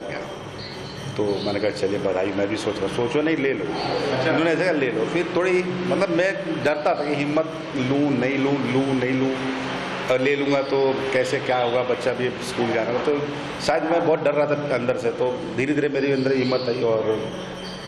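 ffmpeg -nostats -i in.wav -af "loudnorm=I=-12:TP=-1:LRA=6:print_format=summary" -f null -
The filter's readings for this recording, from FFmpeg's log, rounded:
Input Integrated:    -22.6 LUFS
Input True Peak:      -9.2 dBTP
Input LRA:             1.4 LU
Input Threshold:     -32.7 LUFS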